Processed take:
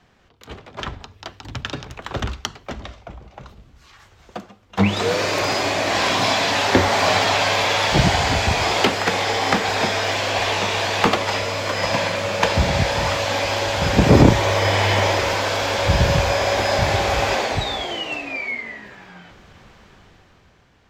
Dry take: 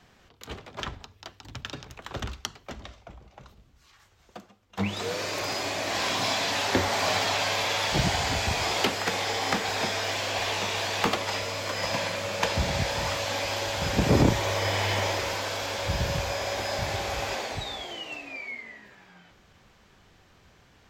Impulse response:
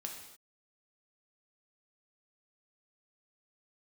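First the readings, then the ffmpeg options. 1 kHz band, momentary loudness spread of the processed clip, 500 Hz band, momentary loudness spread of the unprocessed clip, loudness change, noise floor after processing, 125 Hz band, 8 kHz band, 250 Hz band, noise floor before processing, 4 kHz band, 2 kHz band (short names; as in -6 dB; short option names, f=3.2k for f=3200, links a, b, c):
+9.5 dB, 16 LU, +9.5 dB, 15 LU, +8.5 dB, -54 dBFS, +9.5 dB, +5.0 dB, +9.5 dB, -59 dBFS, +7.0 dB, +8.5 dB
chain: -af "highshelf=f=9.3k:g=10,dynaudnorm=f=220:g=9:m=10.5dB,aemphasis=mode=reproduction:type=50fm,volume=1dB"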